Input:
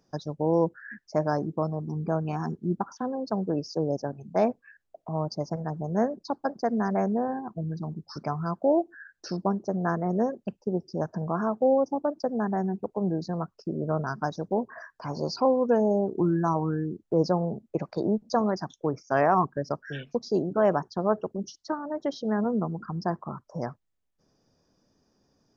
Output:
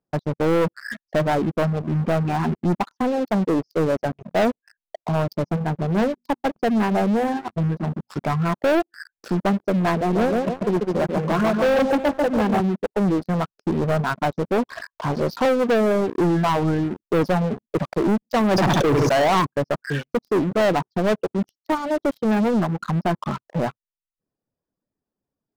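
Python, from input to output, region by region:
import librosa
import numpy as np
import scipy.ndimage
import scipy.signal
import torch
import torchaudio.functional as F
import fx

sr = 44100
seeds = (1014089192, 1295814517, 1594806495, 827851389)

y = fx.chain(x, sr, fx.hum_notches(base_hz=60, count=4),
    fx.dynamic_eq(hz=640.0, q=2.3, threshold_db=-38.0, ratio=4.0, max_db=-4), at=(5.29, 8.49))
y = fx.chain(y, sr, fx.highpass(hz=170.0, slope=24),
    fx.echo_filtered(ms=142, feedback_pct=51, hz=1700.0, wet_db=-3.0), at=(10.01, 12.6))
y = fx.chain(y, sr, fx.room_flutter(wall_m=11.9, rt60_s=0.38),
    fx.env_flatten(amount_pct=100), at=(18.51, 19.4))
y = scipy.signal.sosfilt(scipy.signal.butter(2, 2400.0, 'lowpass', fs=sr, output='sos'), y)
y = fx.dereverb_blind(y, sr, rt60_s=0.75)
y = fx.leveller(y, sr, passes=5)
y = y * 10.0 ** (-5.5 / 20.0)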